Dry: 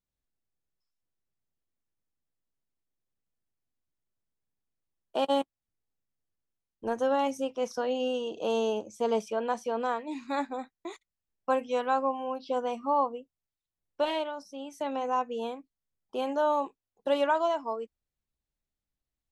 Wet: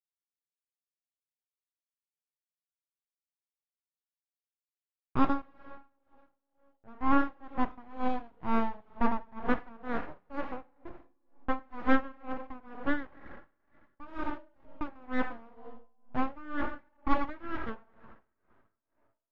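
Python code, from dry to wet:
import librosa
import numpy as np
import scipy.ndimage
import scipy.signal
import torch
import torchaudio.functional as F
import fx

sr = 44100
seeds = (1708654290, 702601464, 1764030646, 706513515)

y = fx.backlash(x, sr, play_db=-28.5)
y = fx.rev_double_slope(y, sr, seeds[0], early_s=0.95, late_s=3.2, knee_db=-21, drr_db=7.0)
y = np.abs(y)
y = scipy.signal.sosfilt(scipy.signal.butter(2, 1700.0, 'lowpass', fs=sr, output='sos'), y)
y = y * 10.0 ** (-24 * (0.5 - 0.5 * np.cos(2.0 * np.pi * 2.1 * np.arange(len(y)) / sr)) / 20.0)
y = F.gain(torch.from_numpy(y), 6.5).numpy()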